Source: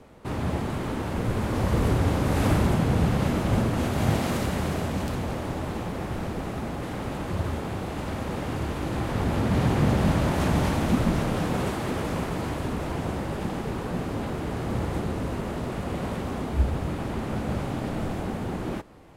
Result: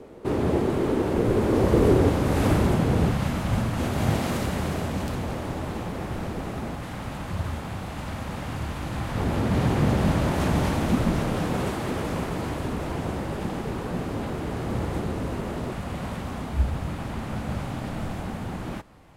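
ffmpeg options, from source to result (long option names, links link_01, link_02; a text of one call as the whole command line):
ffmpeg -i in.wav -af "asetnsamples=nb_out_samples=441:pad=0,asendcmd='2.09 equalizer g 3.5;3.12 equalizer g -7.5;3.8 equalizer g -0.5;6.75 equalizer g -8;9.17 equalizer g 0.5;15.73 equalizer g -6.5',equalizer=frequency=390:width_type=o:width=1.1:gain=12" out.wav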